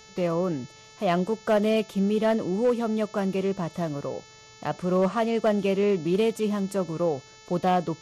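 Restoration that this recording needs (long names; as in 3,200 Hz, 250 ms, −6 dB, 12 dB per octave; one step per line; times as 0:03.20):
clipped peaks rebuilt −16 dBFS
hum removal 437.6 Hz, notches 16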